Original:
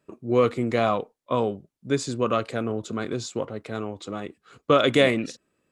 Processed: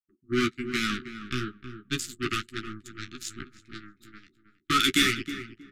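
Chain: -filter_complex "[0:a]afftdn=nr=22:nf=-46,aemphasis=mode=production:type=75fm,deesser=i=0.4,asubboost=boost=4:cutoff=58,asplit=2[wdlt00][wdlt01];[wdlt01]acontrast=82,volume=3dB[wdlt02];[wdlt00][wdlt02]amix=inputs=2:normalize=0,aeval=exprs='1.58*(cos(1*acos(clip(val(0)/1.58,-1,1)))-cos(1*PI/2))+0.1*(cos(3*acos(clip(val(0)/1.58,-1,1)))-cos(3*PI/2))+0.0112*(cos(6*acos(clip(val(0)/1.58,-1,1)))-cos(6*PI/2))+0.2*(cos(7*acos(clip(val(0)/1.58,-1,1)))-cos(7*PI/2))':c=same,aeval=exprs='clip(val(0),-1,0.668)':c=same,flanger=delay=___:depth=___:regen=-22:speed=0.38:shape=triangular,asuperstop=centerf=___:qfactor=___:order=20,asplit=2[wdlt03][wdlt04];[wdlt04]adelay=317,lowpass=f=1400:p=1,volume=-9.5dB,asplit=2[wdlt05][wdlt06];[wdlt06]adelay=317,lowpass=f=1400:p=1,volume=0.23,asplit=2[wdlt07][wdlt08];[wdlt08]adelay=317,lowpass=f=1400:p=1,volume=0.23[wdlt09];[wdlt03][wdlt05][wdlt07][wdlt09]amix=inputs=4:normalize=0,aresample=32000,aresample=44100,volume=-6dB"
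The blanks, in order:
9.6, 6, 690, 0.82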